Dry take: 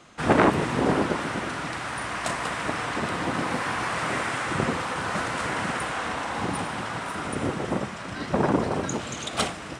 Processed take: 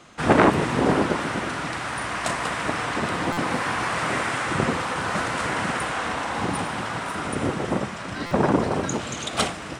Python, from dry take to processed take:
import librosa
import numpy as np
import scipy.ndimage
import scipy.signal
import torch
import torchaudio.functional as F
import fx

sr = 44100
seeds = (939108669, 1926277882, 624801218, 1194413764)

y = fx.dmg_crackle(x, sr, seeds[0], per_s=30.0, level_db=-47.0)
y = fx.buffer_glitch(y, sr, at_s=(3.32, 8.26), block=256, repeats=8)
y = y * librosa.db_to_amplitude(2.5)